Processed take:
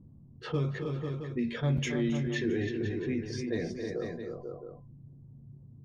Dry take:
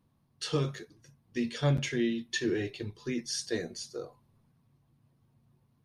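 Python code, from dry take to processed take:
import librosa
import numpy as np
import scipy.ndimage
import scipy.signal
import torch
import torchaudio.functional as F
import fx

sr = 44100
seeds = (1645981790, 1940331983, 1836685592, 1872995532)

p1 = fx.noise_reduce_blind(x, sr, reduce_db=9)
p2 = fx.env_lowpass(p1, sr, base_hz=370.0, full_db=-25.5)
p3 = fx.low_shelf(p2, sr, hz=300.0, db=7.0)
p4 = p3 + fx.echo_multitap(p3, sr, ms=(270, 315, 495, 669), db=(-14.0, -9.5, -10.5, -19.0), dry=0)
p5 = fx.env_flatten(p4, sr, amount_pct=50)
y = p5 * librosa.db_to_amplitude(-7.5)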